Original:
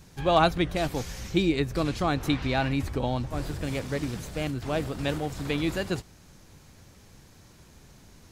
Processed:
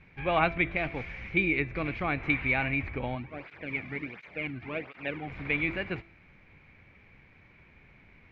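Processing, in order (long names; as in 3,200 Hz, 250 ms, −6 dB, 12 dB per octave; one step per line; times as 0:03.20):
transistor ladder low-pass 2,400 Hz, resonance 80%
hum removal 334.6 Hz, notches 32
0:03.15–0:05.28: through-zero flanger with one copy inverted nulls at 1.4 Hz, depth 2.3 ms
level +6.5 dB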